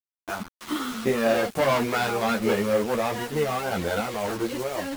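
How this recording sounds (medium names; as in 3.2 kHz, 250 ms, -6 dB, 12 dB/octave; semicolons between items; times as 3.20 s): random-step tremolo; a quantiser's noise floor 6-bit, dither none; a shimmering, thickened sound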